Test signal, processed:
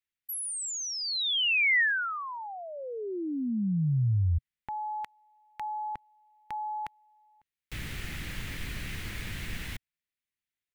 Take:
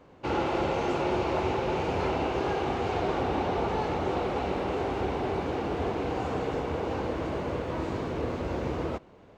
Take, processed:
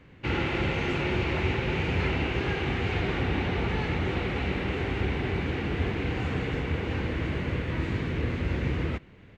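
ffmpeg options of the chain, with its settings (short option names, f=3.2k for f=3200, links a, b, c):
-af "firequalizer=gain_entry='entry(120,0);entry(280,-7);entry(640,-16);entry(1100,-12);entry(1900,2);entry(5200,-10)':delay=0.05:min_phase=1,volume=7.5dB"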